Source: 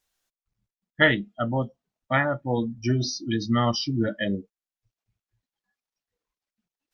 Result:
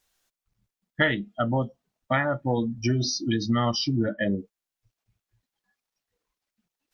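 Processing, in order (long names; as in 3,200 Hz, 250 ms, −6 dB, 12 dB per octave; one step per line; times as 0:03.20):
0:03.96–0:04.38: low-pass filter 1,900 Hz 12 dB per octave
downward compressor 2.5 to 1, threshold −28 dBFS, peak gain reduction 10.5 dB
level +5 dB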